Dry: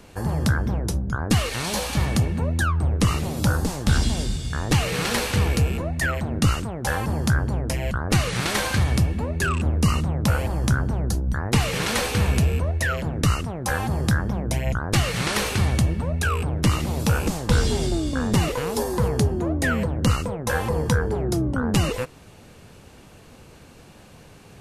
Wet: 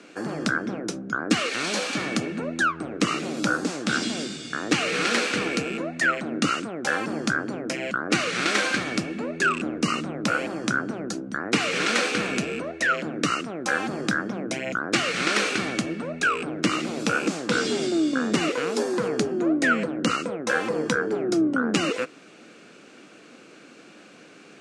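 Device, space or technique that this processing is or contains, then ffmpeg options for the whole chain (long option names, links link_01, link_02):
television speaker: -af "highpass=frequency=210:width=0.5412,highpass=frequency=210:width=1.3066,equalizer=frequency=310:width_type=q:width=4:gain=6,equalizer=frequency=910:width_type=q:width=4:gain=-9,equalizer=frequency=1400:width_type=q:width=4:gain=7,equalizer=frequency=2400:width_type=q:width=4:gain=5,lowpass=frequency=8000:width=0.5412,lowpass=frequency=8000:width=1.3066"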